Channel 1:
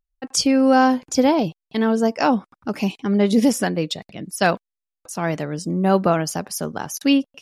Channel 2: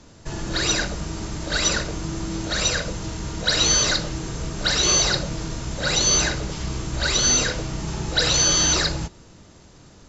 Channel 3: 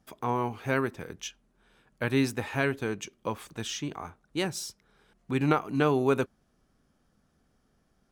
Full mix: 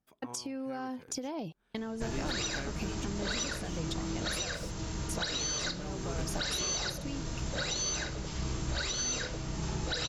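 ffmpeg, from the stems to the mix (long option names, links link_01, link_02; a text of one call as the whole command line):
ffmpeg -i stem1.wav -i stem2.wav -i stem3.wav -filter_complex "[0:a]agate=range=-33dB:threshold=-37dB:ratio=3:detection=peak,acompressor=threshold=-22dB:ratio=6,volume=-5.5dB[link_01];[1:a]adelay=1750,volume=-6.5dB[link_02];[2:a]dynaudnorm=framelen=210:gausssize=17:maxgain=11.5dB,volume=-16dB[link_03];[link_01][link_03]amix=inputs=2:normalize=0,acompressor=threshold=-35dB:ratio=5,volume=0dB[link_04];[link_02][link_04]amix=inputs=2:normalize=0,alimiter=limit=-23.5dB:level=0:latency=1:release=493" out.wav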